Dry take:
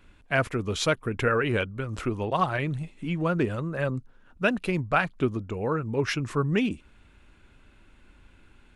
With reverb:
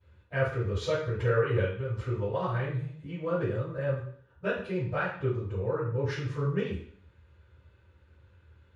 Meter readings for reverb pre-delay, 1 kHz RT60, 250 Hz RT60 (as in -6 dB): 3 ms, 0.55 s, 0.65 s